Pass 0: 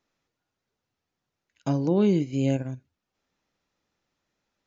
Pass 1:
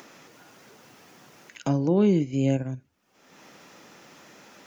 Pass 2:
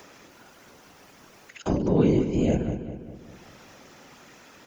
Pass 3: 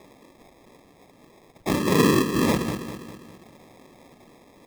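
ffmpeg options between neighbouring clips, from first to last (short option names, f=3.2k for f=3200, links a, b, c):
-filter_complex "[0:a]equalizer=f=4k:t=o:w=0.51:g=-5,acrossover=split=130[a][b];[b]acompressor=mode=upward:threshold=-28dB:ratio=2.5[c];[a][c]amix=inputs=2:normalize=0,volume=1dB"
-filter_complex "[0:a]afftfilt=real='hypot(re,im)*cos(2*PI*random(0))':imag='hypot(re,im)*sin(2*PI*random(1))':win_size=512:overlap=0.75,asplit=2[a][b];[b]adelay=201,lowpass=f=3.7k:p=1,volume=-10dB,asplit=2[c][d];[d]adelay=201,lowpass=f=3.7k:p=1,volume=0.52,asplit=2[e][f];[f]adelay=201,lowpass=f=3.7k:p=1,volume=0.52,asplit=2[g][h];[h]adelay=201,lowpass=f=3.7k:p=1,volume=0.52,asplit=2[i][j];[j]adelay=201,lowpass=f=3.7k:p=1,volume=0.52,asplit=2[k][l];[l]adelay=201,lowpass=f=3.7k:p=1,volume=0.52[m];[c][e][g][i][k][m]amix=inputs=6:normalize=0[n];[a][n]amix=inputs=2:normalize=0,volume=6dB"
-af "bandpass=f=360:t=q:w=0.52:csg=0,acrusher=samples=30:mix=1:aa=0.000001,volume=2.5dB"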